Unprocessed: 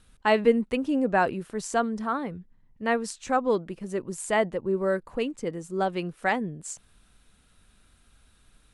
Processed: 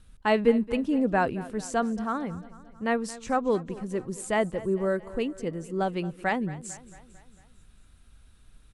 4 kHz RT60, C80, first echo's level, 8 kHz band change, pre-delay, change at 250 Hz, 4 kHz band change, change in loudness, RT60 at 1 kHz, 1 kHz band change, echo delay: none, none, -18.0 dB, -2.5 dB, none, +1.0 dB, -2.5 dB, -1.0 dB, none, -2.0 dB, 0.224 s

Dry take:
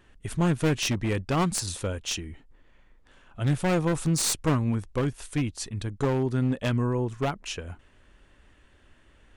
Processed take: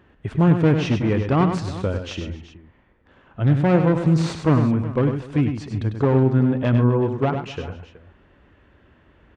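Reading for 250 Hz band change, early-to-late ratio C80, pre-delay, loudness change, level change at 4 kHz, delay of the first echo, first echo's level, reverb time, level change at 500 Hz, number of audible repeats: +8.0 dB, none, none, +7.5 dB, -3.5 dB, 99 ms, -7.0 dB, none, +7.5 dB, 4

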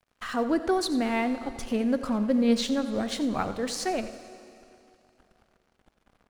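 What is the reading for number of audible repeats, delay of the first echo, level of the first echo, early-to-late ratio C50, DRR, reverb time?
1, 89 ms, -15.0 dB, 10.5 dB, 9.5 dB, 2.7 s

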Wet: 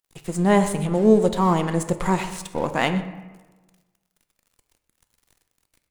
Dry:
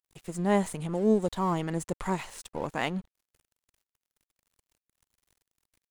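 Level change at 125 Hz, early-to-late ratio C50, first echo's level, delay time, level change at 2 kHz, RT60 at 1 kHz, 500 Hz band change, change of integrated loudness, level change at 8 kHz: +9.0 dB, 10.5 dB, -18.5 dB, 0.124 s, +8.5 dB, 1.2 s, +8.5 dB, +8.5 dB, +8.0 dB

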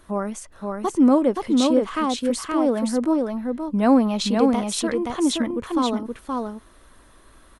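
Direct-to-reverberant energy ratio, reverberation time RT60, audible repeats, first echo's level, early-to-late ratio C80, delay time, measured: none, none, 1, -3.5 dB, none, 0.523 s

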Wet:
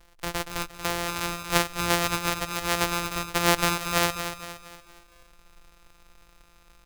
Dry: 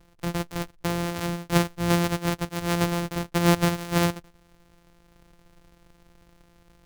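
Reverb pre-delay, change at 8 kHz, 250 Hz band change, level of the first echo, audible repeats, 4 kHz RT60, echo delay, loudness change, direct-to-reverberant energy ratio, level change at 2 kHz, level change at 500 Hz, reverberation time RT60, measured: none, +5.0 dB, -7.5 dB, -9.0 dB, 4, none, 0.233 s, -0.5 dB, none, +4.0 dB, -2.0 dB, none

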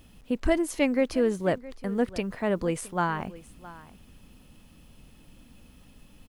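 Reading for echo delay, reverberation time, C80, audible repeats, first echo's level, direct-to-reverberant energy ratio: 0.665 s, none, none, 1, -18.5 dB, none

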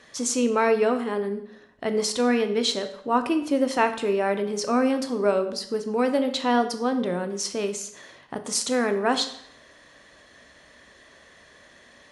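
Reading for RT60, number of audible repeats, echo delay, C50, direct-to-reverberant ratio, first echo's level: 0.70 s, none, none, 11.0 dB, 8.0 dB, none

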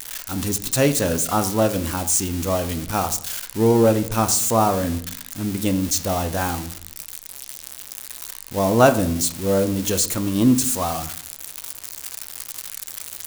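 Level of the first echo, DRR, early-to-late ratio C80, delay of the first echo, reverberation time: none, 9.0 dB, 16.5 dB, none, 0.60 s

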